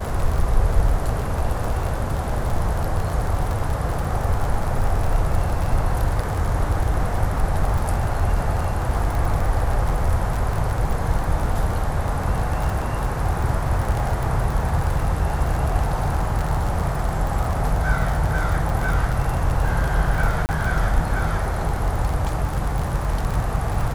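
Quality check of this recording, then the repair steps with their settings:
crackle 38/s -23 dBFS
20.46–20.49 gap 29 ms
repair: de-click; interpolate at 20.46, 29 ms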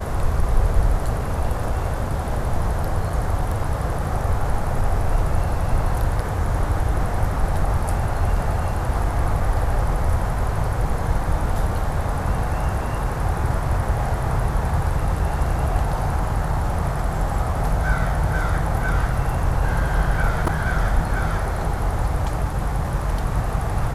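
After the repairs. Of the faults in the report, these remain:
none

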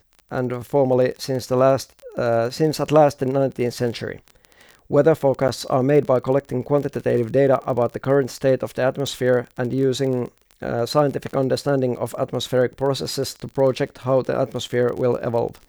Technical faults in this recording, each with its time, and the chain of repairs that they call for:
crackle 23/s -28 dBFS
5.48–5.49 gap 9 ms
9.07 pop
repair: de-click; interpolate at 5.48, 9 ms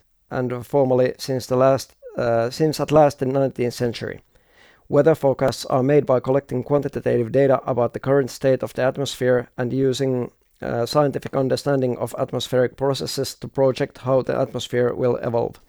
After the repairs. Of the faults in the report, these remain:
none

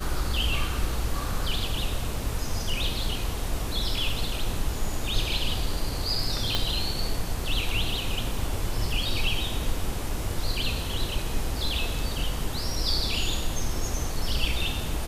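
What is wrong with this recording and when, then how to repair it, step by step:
6.55 pop -10 dBFS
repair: de-click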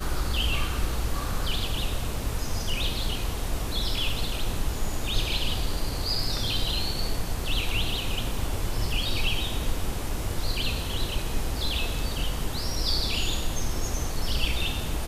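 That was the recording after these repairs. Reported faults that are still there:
6.55 pop

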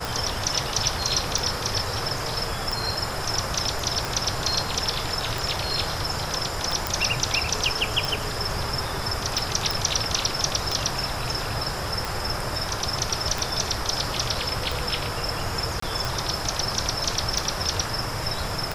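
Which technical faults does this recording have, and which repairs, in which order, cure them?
tick 45 rpm
6.87 pop
9.71 pop
15.8–15.82 gap 24 ms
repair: de-click; interpolate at 15.8, 24 ms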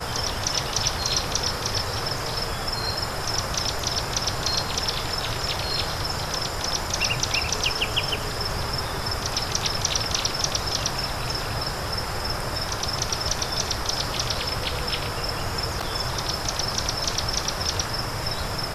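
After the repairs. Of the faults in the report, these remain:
6.87 pop

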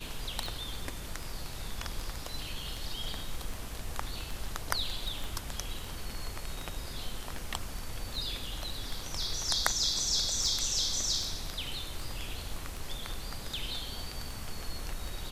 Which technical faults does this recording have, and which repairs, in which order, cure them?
tick 78 rpm
5.24 pop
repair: de-click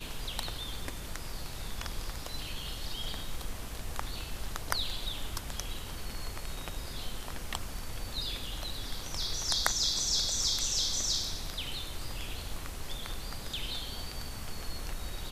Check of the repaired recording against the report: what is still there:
5.24 pop

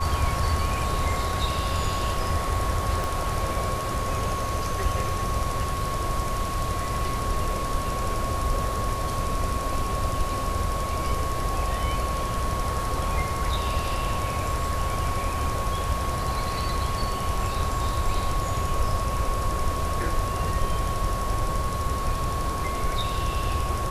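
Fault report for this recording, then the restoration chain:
tone 1100 Hz -30 dBFS
3.04 pop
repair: de-click; notch 1100 Hz, Q 30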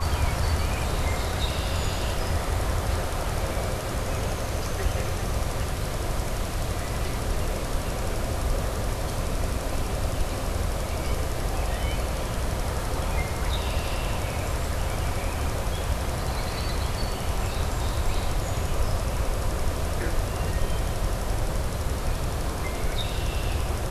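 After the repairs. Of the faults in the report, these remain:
3.04 pop

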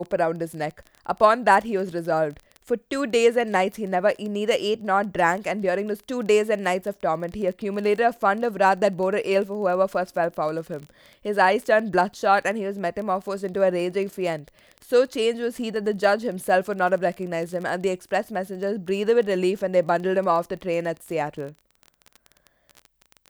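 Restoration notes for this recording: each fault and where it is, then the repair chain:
crackle 22/s -31 dBFS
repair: de-click

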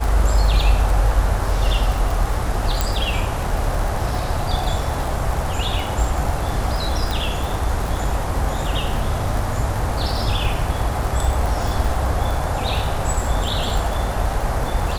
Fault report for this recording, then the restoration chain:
crackle 55/s -23 dBFS
2.81 pop
7.11 pop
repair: de-click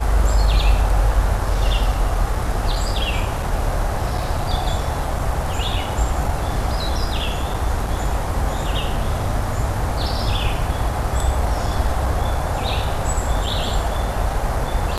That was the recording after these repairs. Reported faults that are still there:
none

